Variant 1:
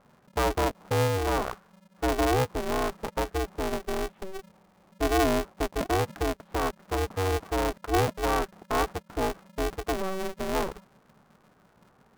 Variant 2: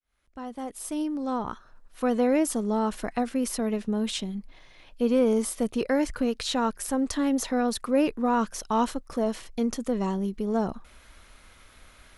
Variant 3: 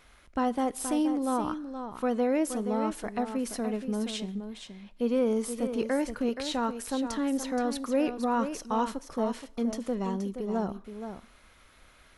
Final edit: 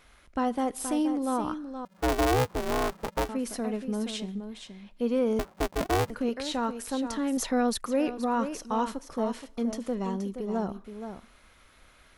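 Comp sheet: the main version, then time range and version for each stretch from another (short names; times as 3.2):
3
1.85–3.29 from 1
5.39–6.1 from 1
7.37–7.86 from 2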